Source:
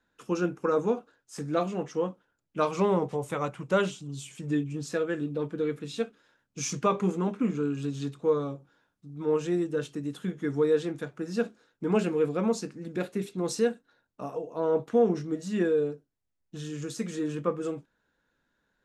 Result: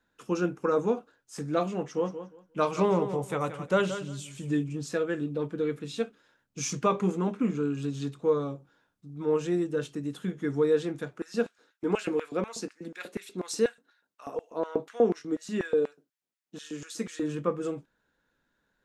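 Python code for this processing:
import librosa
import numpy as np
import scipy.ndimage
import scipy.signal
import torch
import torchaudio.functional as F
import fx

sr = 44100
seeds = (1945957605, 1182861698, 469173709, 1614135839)

y = fx.echo_feedback(x, sr, ms=176, feedback_pct=19, wet_db=-11.0, at=(1.96, 4.68), fade=0.02)
y = fx.filter_lfo_highpass(y, sr, shape='square', hz=4.1, low_hz=250.0, high_hz=1600.0, q=1.0, at=(11.13, 17.21), fade=0.02)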